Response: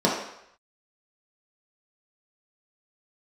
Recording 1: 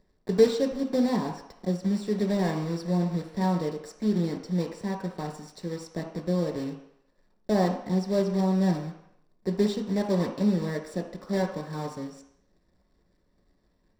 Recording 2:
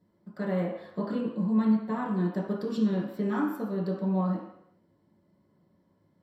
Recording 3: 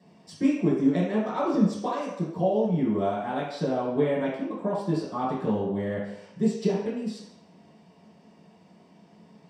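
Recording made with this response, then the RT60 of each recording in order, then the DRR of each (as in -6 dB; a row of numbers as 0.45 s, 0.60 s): 2; 0.75 s, 0.75 s, 0.75 s; 2.0 dB, -5.0 dB, -10.5 dB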